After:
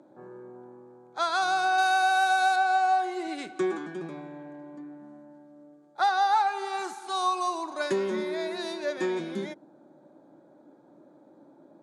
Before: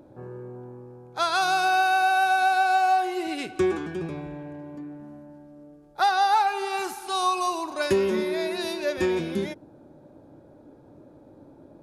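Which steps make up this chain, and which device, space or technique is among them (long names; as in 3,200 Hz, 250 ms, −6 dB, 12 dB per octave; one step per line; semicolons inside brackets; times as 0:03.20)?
television speaker (loudspeaker in its box 190–8,500 Hz, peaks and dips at 250 Hz −4 dB, 450 Hz −7 dB, 2,700 Hz −9 dB, 5,200 Hz −6 dB)
0:01.78–0:02.56: high-shelf EQ 3,900 Hz +10.5 dB
level −2 dB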